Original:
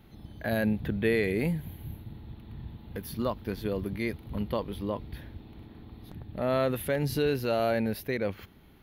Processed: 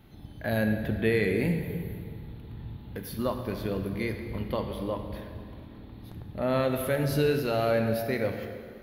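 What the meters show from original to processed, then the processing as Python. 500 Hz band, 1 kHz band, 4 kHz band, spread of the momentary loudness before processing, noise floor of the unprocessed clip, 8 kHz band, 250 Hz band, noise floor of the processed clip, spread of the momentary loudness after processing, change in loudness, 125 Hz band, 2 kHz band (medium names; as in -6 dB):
+1.5 dB, +1.0 dB, +1.0 dB, 19 LU, -54 dBFS, +1.0 dB, +1.0 dB, -46 dBFS, 17 LU, +1.0 dB, +2.5 dB, +1.5 dB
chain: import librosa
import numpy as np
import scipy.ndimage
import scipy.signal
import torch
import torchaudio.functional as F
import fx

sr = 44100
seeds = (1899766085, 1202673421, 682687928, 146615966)

y = fx.rev_plate(x, sr, seeds[0], rt60_s=2.2, hf_ratio=0.7, predelay_ms=0, drr_db=4.5)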